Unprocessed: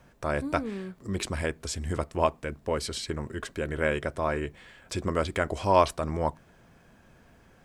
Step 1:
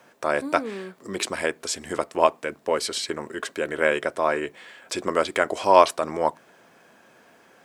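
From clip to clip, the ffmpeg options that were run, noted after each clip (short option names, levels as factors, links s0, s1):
-af "highpass=340,volume=2.11"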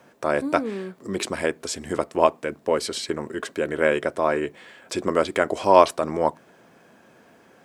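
-af "lowshelf=f=470:g=8.5,volume=0.794"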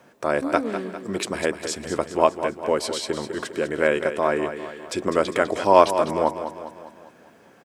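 -af "aecho=1:1:201|402|603|804|1005|1206:0.316|0.161|0.0823|0.0419|0.0214|0.0109"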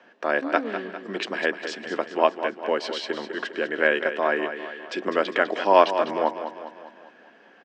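-af "highpass=f=210:w=0.5412,highpass=f=210:w=1.3066,equalizer=f=750:t=q:w=4:g=3,equalizer=f=1700:t=q:w=4:g=9,equalizer=f=2900:t=q:w=4:g=8,lowpass=f=5200:w=0.5412,lowpass=f=5200:w=1.3066,volume=0.708"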